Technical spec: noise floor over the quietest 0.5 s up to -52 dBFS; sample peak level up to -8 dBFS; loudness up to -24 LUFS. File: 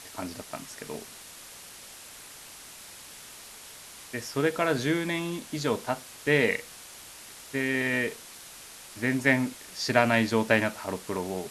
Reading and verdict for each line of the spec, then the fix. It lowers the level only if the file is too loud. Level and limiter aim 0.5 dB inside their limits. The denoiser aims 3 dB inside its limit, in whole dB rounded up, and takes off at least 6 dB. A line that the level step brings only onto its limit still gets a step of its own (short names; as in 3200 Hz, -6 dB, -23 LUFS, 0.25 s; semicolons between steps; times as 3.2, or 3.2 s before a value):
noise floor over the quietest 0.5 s -47 dBFS: fail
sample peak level -4.5 dBFS: fail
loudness -28.0 LUFS: OK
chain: denoiser 8 dB, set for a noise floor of -47 dBFS; limiter -8.5 dBFS